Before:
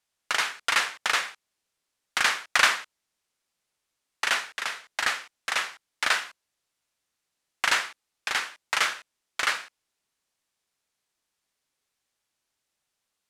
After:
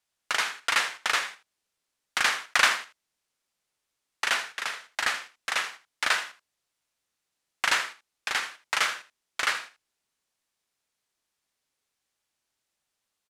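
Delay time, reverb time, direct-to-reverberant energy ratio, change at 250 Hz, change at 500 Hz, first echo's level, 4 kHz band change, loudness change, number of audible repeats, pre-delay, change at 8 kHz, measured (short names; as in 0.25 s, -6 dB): 80 ms, none, none, -1.0 dB, -1.0 dB, -14.0 dB, -1.0 dB, -1.0 dB, 1, none, -1.0 dB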